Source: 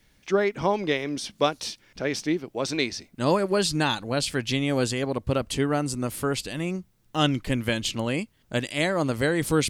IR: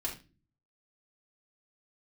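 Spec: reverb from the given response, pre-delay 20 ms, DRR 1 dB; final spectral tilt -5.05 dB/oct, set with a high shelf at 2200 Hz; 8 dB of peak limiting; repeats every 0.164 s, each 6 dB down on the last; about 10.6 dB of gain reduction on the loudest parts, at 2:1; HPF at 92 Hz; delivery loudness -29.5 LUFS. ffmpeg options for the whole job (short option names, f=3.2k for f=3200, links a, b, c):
-filter_complex "[0:a]highpass=92,highshelf=f=2.2k:g=-5,acompressor=threshold=-37dB:ratio=2,alimiter=level_in=2.5dB:limit=-24dB:level=0:latency=1,volume=-2.5dB,aecho=1:1:164|328|492|656|820|984:0.501|0.251|0.125|0.0626|0.0313|0.0157,asplit=2[a][b];[1:a]atrim=start_sample=2205,adelay=20[c];[b][c]afir=irnorm=-1:irlink=0,volume=-3.5dB[d];[a][d]amix=inputs=2:normalize=0,volume=4.5dB"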